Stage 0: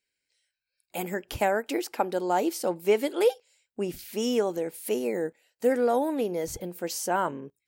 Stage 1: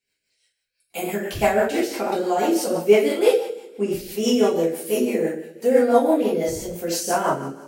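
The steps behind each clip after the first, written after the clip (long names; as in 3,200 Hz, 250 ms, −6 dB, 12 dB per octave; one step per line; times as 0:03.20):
coupled-rooms reverb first 0.62 s, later 1.9 s, from −19 dB, DRR −8.5 dB
rotating-speaker cabinet horn 6 Hz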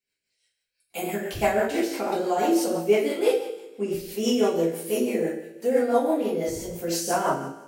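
automatic gain control gain up to 4 dB
tuned comb filter 56 Hz, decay 1 s, harmonics all, mix 60%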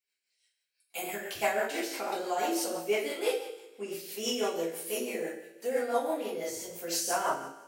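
high-pass filter 980 Hz 6 dB per octave
level −1.5 dB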